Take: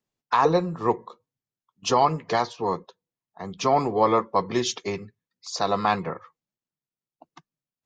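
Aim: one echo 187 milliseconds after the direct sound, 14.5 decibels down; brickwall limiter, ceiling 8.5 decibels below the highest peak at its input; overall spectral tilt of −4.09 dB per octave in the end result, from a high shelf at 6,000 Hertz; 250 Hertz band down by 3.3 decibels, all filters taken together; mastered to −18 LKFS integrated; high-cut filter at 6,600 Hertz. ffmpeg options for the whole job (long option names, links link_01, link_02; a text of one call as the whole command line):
ffmpeg -i in.wav -af "lowpass=6600,equalizer=frequency=250:width_type=o:gain=-5,highshelf=frequency=6000:gain=5,alimiter=limit=-16.5dB:level=0:latency=1,aecho=1:1:187:0.188,volume=11.5dB" out.wav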